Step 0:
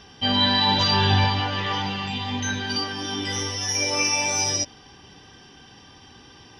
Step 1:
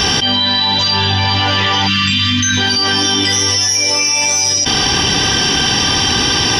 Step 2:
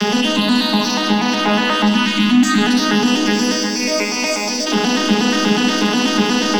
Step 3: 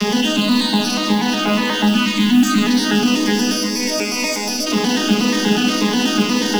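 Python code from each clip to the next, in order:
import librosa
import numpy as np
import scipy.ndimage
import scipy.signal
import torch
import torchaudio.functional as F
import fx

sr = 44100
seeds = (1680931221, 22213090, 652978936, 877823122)

y1 = fx.spec_erase(x, sr, start_s=1.87, length_s=0.7, low_hz=330.0, high_hz=1000.0)
y1 = fx.high_shelf(y1, sr, hz=2600.0, db=9.0)
y1 = fx.env_flatten(y1, sr, amount_pct=100)
y1 = y1 * 10.0 ** (-1.0 / 20.0)
y2 = fx.vocoder_arp(y1, sr, chord='minor triad', root=56, every_ms=121)
y2 = fx.leveller(y2, sr, passes=2)
y2 = fx.room_shoebox(y2, sr, seeds[0], volume_m3=1800.0, walls='mixed', distance_m=1.4)
y2 = y2 * 10.0 ** (-8.5 / 20.0)
y3 = fx.tracing_dist(y2, sr, depth_ms=0.025)
y3 = fx.mod_noise(y3, sr, seeds[1], snr_db=27)
y3 = fx.notch_cascade(y3, sr, direction='falling', hz=1.9)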